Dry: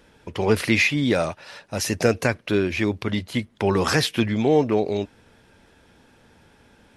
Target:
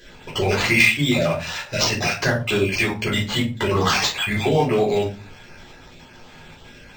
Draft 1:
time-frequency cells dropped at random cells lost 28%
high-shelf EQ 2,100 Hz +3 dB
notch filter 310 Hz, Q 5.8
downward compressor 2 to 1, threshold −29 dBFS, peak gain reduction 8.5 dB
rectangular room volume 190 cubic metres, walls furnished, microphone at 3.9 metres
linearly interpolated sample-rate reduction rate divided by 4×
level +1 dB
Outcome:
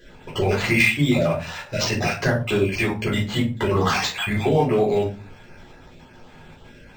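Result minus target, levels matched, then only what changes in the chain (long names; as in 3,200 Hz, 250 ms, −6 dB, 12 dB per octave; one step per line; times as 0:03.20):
4,000 Hz band −3.5 dB
change: high-shelf EQ 2,100 Hz +12.5 dB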